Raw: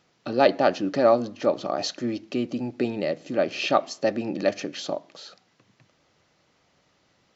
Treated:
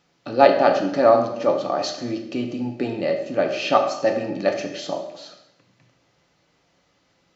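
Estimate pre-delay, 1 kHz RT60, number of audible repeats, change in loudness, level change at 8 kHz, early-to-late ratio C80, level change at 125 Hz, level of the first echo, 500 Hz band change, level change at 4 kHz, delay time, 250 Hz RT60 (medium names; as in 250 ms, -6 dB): 3 ms, 0.80 s, no echo, +4.0 dB, no reading, 10.0 dB, +2.5 dB, no echo, +4.0 dB, +1.0 dB, no echo, 1.0 s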